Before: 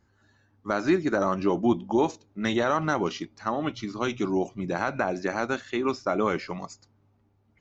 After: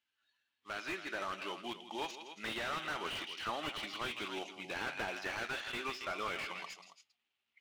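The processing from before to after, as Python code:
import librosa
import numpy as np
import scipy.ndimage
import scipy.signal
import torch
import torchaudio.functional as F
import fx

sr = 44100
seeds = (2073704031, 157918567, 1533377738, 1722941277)

y = fx.cvsd(x, sr, bps=64000)
y = fx.noise_reduce_blind(y, sr, reduce_db=10)
y = fx.rider(y, sr, range_db=10, speed_s=0.5)
y = fx.bandpass_q(y, sr, hz=2900.0, q=2.7)
y = fx.echo_multitap(y, sr, ms=(163, 275), db=(-13.5, -13.5))
y = fx.slew_limit(y, sr, full_power_hz=13.0)
y = y * librosa.db_to_amplitude(7.0)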